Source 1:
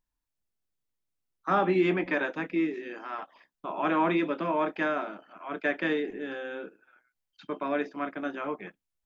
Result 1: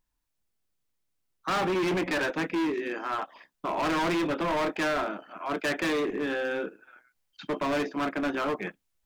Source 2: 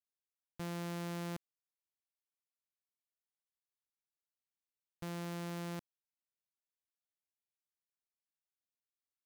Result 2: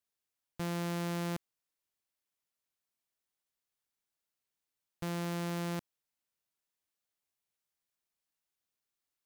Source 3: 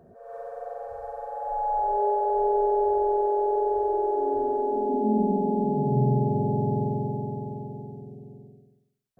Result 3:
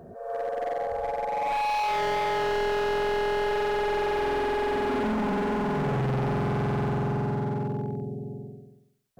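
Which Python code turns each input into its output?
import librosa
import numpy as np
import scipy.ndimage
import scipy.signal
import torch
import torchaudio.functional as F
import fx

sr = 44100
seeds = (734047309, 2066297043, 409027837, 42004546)

p1 = fx.rider(x, sr, range_db=3, speed_s=2.0)
p2 = x + (p1 * librosa.db_to_amplitude(0.5))
y = np.clip(p2, -10.0 ** (-25.0 / 20.0), 10.0 ** (-25.0 / 20.0))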